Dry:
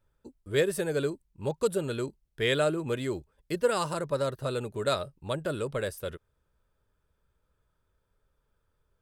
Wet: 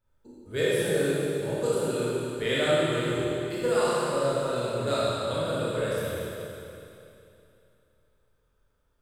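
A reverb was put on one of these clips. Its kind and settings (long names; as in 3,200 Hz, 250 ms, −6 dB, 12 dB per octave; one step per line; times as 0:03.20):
four-comb reverb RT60 2.8 s, combs from 25 ms, DRR −9 dB
level −6 dB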